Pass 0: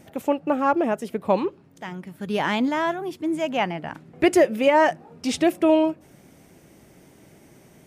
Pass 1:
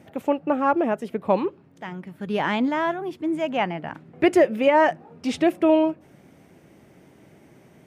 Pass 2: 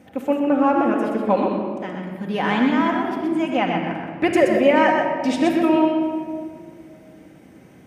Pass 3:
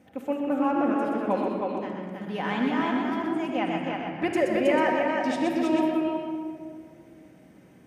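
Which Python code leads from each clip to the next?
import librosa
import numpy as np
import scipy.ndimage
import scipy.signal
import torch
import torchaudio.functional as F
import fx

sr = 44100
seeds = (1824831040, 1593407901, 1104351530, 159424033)

y1 = scipy.signal.sosfilt(scipy.signal.butter(2, 69.0, 'highpass', fs=sr, output='sos'), x)
y1 = fx.bass_treble(y1, sr, bass_db=0, treble_db=-9)
y2 = y1 + 10.0 ** (-5.0 / 20.0) * np.pad(y1, (int(125 * sr / 1000.0), 0))[:len(y1)]
y2 = fx.room_shoebox(y2, sr, seeds[0], volume_m3=3700.0, walls='mixed', distance_m=2.0)
y3 = y2 + 10.0 ** (-3.5 / 20.0) * np.pad(y2, (int(319 * sr / 1000.0), 0))[:len(y2)]
y3 = y3 * librosa.db_to_amplitude(-8.0)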